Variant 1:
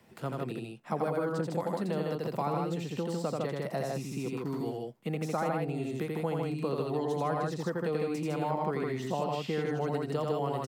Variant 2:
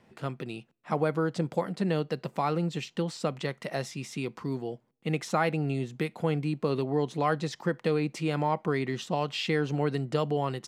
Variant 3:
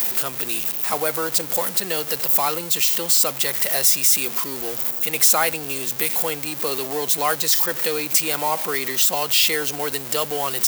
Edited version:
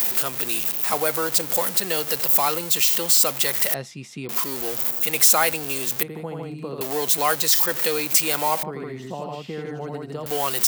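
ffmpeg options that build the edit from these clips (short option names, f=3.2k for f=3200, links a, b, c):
-filter_complex "[0:a]asplit=2[a][b];[2:a]asplit=4[c][d][e][f];[c]atrim=end=3.742[g];[1:a]atrim=start=3.738:end=4.292[h];[d]atrim=start=4.288:end=6.032[i];[a]atrim=start=6.028:end=6.812[j];[e]atrim=start=6.808:end=8.632[k];[b]atrim=start=8.628:end=10.262[l];[f]atrim=start=10.258[m];[g][h]acrossfade=d=0.004:c1=hsin:c2=hsin[n];[n][i]acrossfade=d=0.004:c1=hsin:c2=hsin[o];[o][j]acrossfade=d=0.004:c1=hsin:c2=hsin[p];[p][k]acrossfade=d=0.004:c1=hsin:c2=hsin[q];[q][l]acrossfade=d=0.004:c1=hsin:c2=hsin[r];[r][m]acrossfade=d=0.004:c1=hsin:c2=hsin"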